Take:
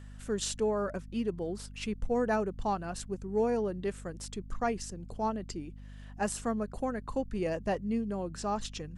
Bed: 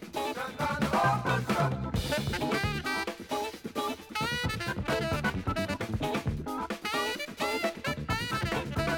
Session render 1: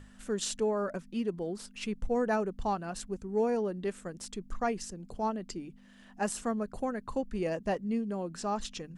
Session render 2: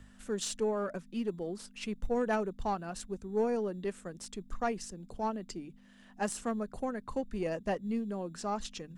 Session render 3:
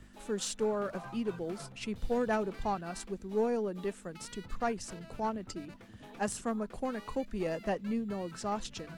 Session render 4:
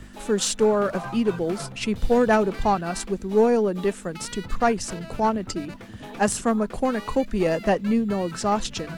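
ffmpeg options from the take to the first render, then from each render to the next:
ffmpeg -i in.wav -af "bandreject=frequency=50:width_type=h:width=6,bandreject=frequency=100:width_type=h:width=6,bandreject=frequency=150:width_type=h:width=6" out.wav
ffmpeg -i in.wav -filter_complex "[0:a]acrossover=split=120|2500[link_01][link_02][link_03];[link_01]acrusher=samples=12:mix=1:aa=0.000001[link_04];[link_04][link_02][link_03]amix=inputs=3:normalize=0,aeval=exprs='0.141*(cos(1*acos(clip(val(0)/0.141,-1,1)))-cos(1*PI/2))+0.01*(cos(3*acos(clip(val(0)/0.141,-1,1)))-cos(3*PI/2))+0.00501*(cos(4*acos(clip(val(0)/0.141,-1,1)))-cos(4*PI/2))':channel_layout=same" out.wav
ffmpeg -i in.wav -i bed.wav -filter_complex "[1:a]volume=-21dB[link_01];[0:a][link_01]amix=inputs=2:normalize=0" out.wav
ffmpeg -i in.wav -af "volume=12dB" out.wav

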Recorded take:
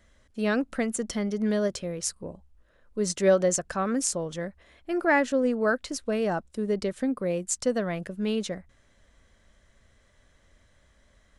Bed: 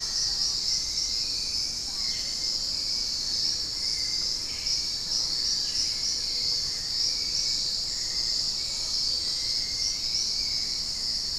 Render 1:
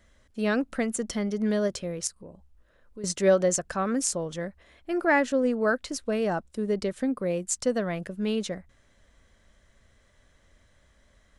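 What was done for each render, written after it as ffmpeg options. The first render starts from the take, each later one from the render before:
ffmpeg -i in.wav -filter_complex "[0:a]asettb=1/sr,asplit=3[link_01][link_02][link_03];[link_01]atrim=end=2.074[link_04];[link_02]atrim=start=2.07:end=3.04,asetpts=PTS-STARTPTS,afade=type=in:duration=0.004:curve=qsin,afade=type=out:start_time=0.966:duration=0.004:curve=qsin,acompressor=threshold=-46dB:ratio=2:attack=3.2:release=140:knee=1:detection=peak[link_05];[link_03]atrim=start=3.036[link_06];[link_04][link_05]acrossfade=duration=0.004:curve1=hsin:curve2=qsin[link_07];[link_07][link_06]acrossfade=duration=0.004:curve1=qsin:curve2=hsin" out.wav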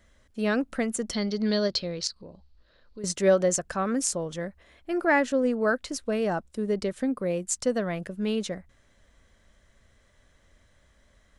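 ffmpeg -i in.wav -filter_complex "[0:a]asettb=1/sr,asplit=3[link_01][link_02][link_03];[link_01]atrim=end=1.134[link_04];[link_02]atrim=start=1.13:end=2.99,asetpts=PTS-STARTPTS,afade=type=in:duration=0.004:curve=qsin,afade=type=out:start_time=1.856:duration=0.004:curve=qsin,lowpass=frequency=4400:width_type=q:width=8[link_05];[link_03]atrim=start=2.986[link_06];[link_04][link_05]acrossfade=duration=0.004:curve1=hsin:curve2=qsin[link_07];[link_07][link_06]acrossfade=duration=0.004:curve1=qsin:curve2=hsin" out.wav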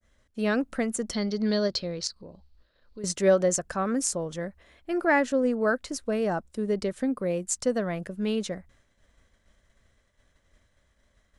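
ffmpeg -i in.wav -af "agate=range=-33dB:threshold=-55dB:ratio=3:detection=peak,adynamicequalizer=threshold=0.00398:dfrequency=3100:dqfactor=1.2:tfrequency=3100:tqfactor=1.2:attack=5:release=100:ratio=0.375:range=2:mode=cutabove:tftype=bell" out.wav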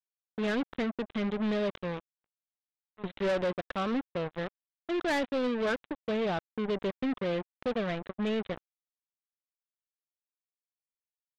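ffmpeg -i in.wav -af "aresample=8000,acrusher=bits=4:mix=0:aa=0.5,aresample=44100,asoftclip=type=tanh:threshold=-25.5dB" out.wav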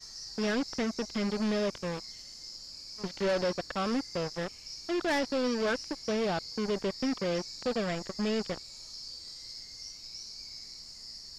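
ffmpeg -i in.wav -i bed.wav -filter_complex "[1:a]volume=-16.5dB[link_01];[0:a][link_01]amix=inputs=2:normalize=0" out.wav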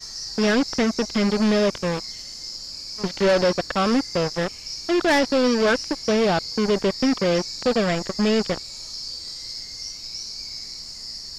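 ffmpeg -i in.wav -af "volume=10.5dB" out.wav

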